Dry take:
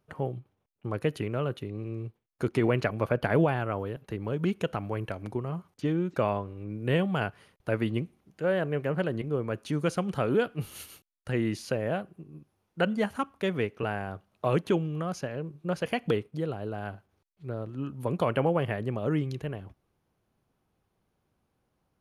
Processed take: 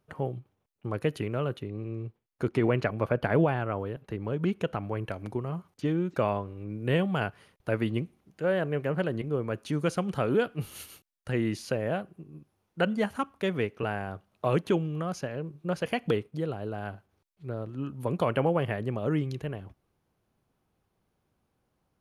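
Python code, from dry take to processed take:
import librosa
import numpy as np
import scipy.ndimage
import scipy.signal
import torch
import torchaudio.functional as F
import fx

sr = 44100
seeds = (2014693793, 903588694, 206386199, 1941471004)

y = fx.high_shelf(x, sr, hz=4300.0, db=-6.5, at=(1.58, 5.08))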